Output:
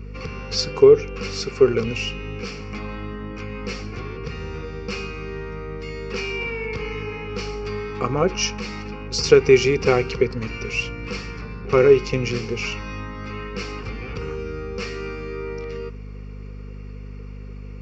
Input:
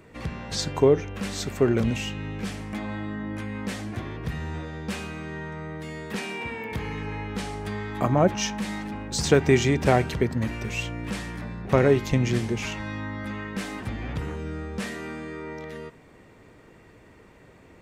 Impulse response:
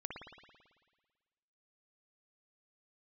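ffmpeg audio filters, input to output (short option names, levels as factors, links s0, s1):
-af "aresample=16000,aresample=44100,superequalizer=7b=3.55:8b=0.631:10b=2.51:12b=3.16:14b=3.55,aeval=exprs='val(0)+0.0282*(sin(2*PI*50*n/s)+sin(2*PI*2*50*n/s)/2+sin(2*PI*3*50*n/s)/3+sin(2*PI*4*50*n/s)/4+sin(2*PI*5*50*n/s)/5)':c=same,volume=0.708"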